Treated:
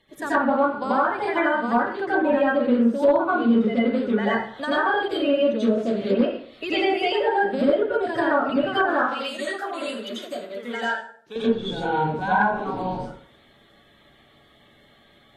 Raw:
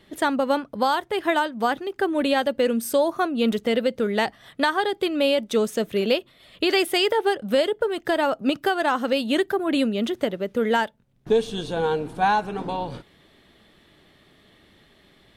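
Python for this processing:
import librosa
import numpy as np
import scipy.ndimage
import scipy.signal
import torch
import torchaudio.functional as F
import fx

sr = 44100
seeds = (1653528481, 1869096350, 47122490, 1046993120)

y = fx.spec_quant(x, sr, step_db=30)
y = fx.highpass(y, sr, hz=1300.0, slope=6, at=(8.96, 11.36))
y = fx.rev_plate(y, sr, seeds[0], rt60_s=0.54, hf_ratio=0.65, predelay_ms=75, drr_db=-9.5)
y = np.clip(10.0 ** (2.0 / 20.0) * y, -1.0, 1.0) / 10.0 ** (2.0 / 20.0)
y = fx.env_lowpass_down(y, sr, base_hz=1900.0, full_db=-7.5)
y = F.gain(torch.from_numpy(y), -8.5).numpy()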